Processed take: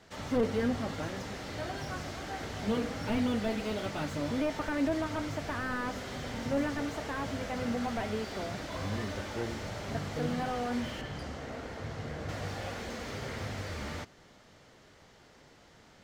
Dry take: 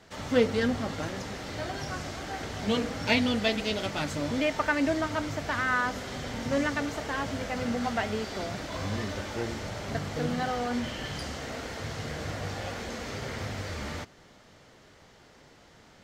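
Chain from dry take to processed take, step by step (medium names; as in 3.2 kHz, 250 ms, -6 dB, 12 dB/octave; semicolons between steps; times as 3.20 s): 11.01–12.29 s: treble shelf 2.4 kHz -10 dB; slew-rate limiter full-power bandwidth 36 Hz; trim -2.5 dB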